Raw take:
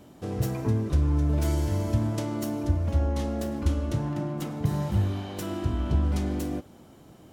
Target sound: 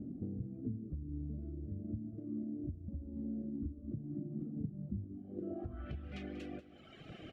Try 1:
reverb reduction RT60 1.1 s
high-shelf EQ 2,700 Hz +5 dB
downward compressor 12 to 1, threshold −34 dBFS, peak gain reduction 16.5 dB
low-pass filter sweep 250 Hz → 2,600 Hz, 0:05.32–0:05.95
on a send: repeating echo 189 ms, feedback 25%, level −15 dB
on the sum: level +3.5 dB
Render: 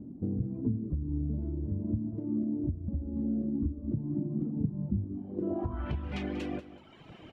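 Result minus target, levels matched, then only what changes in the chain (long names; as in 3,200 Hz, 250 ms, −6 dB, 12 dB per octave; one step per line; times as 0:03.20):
downward compressor: peak gain reduction −9.5 dB; 1,000 Hz band +2.5 dB
add after reverb reduction: Butterworth band-reject 950 Hz, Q 2.6
change: downward compressor 12 to 1, threshold −44.5 dBFS, peak gain reduction 26 dB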